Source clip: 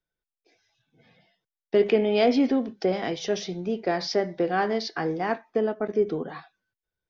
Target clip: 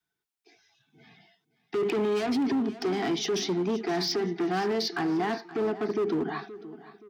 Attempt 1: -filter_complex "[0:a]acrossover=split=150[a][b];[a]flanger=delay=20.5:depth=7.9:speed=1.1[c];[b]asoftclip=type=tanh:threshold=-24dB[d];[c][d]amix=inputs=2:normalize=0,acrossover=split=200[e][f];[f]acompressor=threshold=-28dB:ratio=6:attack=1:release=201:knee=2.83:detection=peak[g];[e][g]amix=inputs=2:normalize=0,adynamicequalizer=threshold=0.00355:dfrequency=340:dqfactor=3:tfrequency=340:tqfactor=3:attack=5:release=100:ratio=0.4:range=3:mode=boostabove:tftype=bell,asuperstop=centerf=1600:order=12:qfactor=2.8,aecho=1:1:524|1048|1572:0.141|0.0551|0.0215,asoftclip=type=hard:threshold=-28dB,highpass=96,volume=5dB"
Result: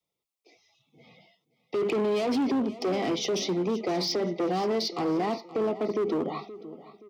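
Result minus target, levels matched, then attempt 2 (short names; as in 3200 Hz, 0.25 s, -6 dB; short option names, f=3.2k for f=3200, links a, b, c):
2000 Hz band -4.5 dB
-filter_complex "[0:a]acrossover=split=150[a][b];[a]flanger=delay=20.5:depth=7.9:speed=1.1[c];[b]asoftclip=type=tanh:threshold=-24dB[d];[c][d]amix=inputs=2:normalize=0,acrossover=split=200[e][f];[f]acompressor=threshold=-28dB:ratio=6:attack=1:release=201:knee=2.83:detection=peak[g];[e][g]amix=inputs=2:normalize=0,adynamicequalizer=threshold=0.00355:dfrequency=340:dqfactor=3:tfrequency=340:tqfactor=3:attack=5:release=100:ratio=0.4:range=3:mode=boostabove:tftype=bell,asuperstop=centerf=550:order=12:qfactor=2.8,aecho=1:1:524|1048|1572:0.141|0.0551|0.0215,asoftclip=type=hard:threshold=-28dB,highpass=96,volume=5dB"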